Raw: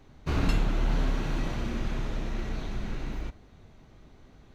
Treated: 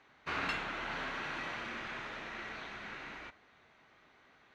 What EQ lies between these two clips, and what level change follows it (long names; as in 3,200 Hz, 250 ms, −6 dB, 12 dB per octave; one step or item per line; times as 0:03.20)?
resonant band-pass 1,800 Hz, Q 1.2
+4.0 dB